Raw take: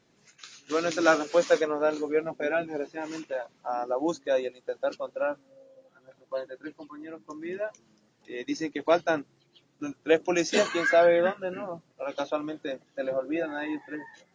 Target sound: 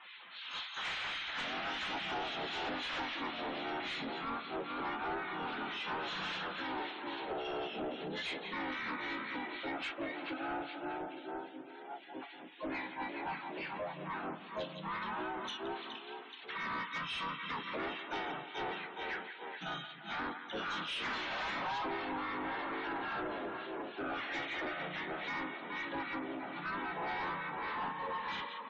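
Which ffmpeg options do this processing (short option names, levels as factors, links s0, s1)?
-filter_complex "[0:a]asplit=2[s0][s1];[s1]asplit=3[s2][s3][s4];[s2]adelay=211,afreqshift=41,volume=0.2[s5];[s3]adelay=422,afreqshift=82,volume=0.07[s6];[s4]adelay=633,afreqshift=123,volume=0.0245[s7];[s5][s6][s7]amix=inputs=3:normalize=0[s8];[s0][s8]amix=inputs=2:normalize=0,acrossover=split=1500|3300[s9][s10][s11];[s9]acompressor=threshold=0.0178:ratio=4[s12];[s10]acompressor=threshold=0.00447:ratio=4[s13];[s11]acompressor=threshold=0.00158:ratio=4[s14];[s12][s13][s14]amix=inputs=3:normalize=0,asetrate=22050,aresample=44100,equalizer=f=480:w=0.31:g=-2.5,asplit=4[s15][s16][s17][s18];[s16]asetrate=22050,aresample=44100,atempo=2,volume=0.316[s19];[s17]asetrate=52444,aresample=44100,atempo=0.840896,volume=0.891[s20];[s18]asetrate=88200,aresample=44100,atempo=0.5,volume=0.2[s21];[s15][s19][s20][s21]amix=inputs=4:normalize=0,acompressor=threshold=0.0126:ratio=5,highpass=190,tiltshelf=f=1100:g=-9,asplit=2[s22][s23];[s23]aecho=0:1:173|346|519|692|865:0.2|0.0978|0.0479|0.0235|0.0115[s24];[s22][s24]amix=inputs=2:normalize=0,acrossover=split=1600[s25][s26];[s25]aeval=exprs='val(0)*(1-0.5/2+0.5/2*cos(2*PI*3.7*n/s))':c=same[s27];[s26]aeval=exprs='val(0)*(1-0.5/2-0.5/2*cos(2*PI*3.7*n/s))':c=same[s28];[s27][s28]amix=inputs=2:normalize=0,asplit=2[s29][s30];[s30]highpass=f=720:p=1,volume=39.8,asoftclip=type=tanh:threshold=0.0668[s31];[s29][s31]amix=inputs=2:normalize=0,lowpass=f=2800:p=1,volume=0.501,afftdn=nr=34:nf=-50,volume=0.562"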